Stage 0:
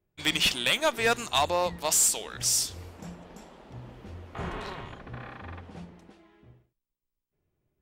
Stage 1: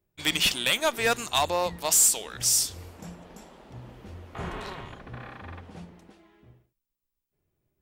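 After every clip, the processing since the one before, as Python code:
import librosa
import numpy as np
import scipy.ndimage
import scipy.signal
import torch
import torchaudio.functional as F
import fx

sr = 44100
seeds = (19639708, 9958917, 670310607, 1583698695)

y = fx.high_shelf(x, sr, hz=8800.0, db=7.0)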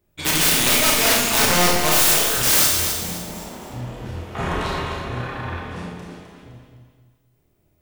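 y = (np.mod(10.0 ** (22.0 / 20.0) * x + 1.0, 2.0) - 1.0) / 10.0 ** (22.0 / 20.0)
y = fx.echo_feedback(y, sr, ms=257, feedback_pct=36, wet_db=-7.5)
y = fx.rev_schroeder(y, sr, rt60_s=0.84, comb_ms=25, drr_db=-2.0)
y = F.gain(torch.from_numpy(y), 8.0).numpy()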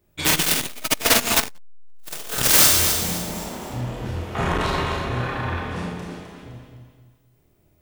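y = fx.transformer_sat(x, sr, knee_hz=500.0)
y = F.gain(torch.from_numpy(y), 3.0).numpy()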